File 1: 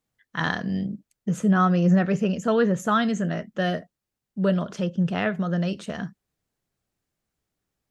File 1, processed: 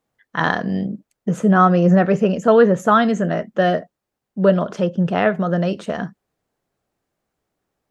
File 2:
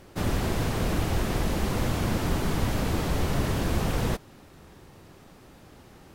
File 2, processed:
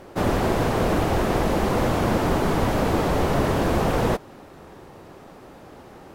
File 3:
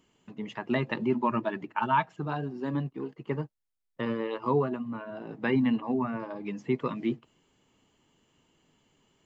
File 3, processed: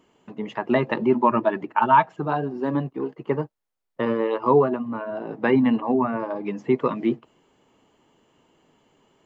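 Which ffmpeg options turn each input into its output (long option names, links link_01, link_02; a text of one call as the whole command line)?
ffmpeg -i in.wav -af "equalizer=frequency=640:width=0.39:gain=10.5" out.wav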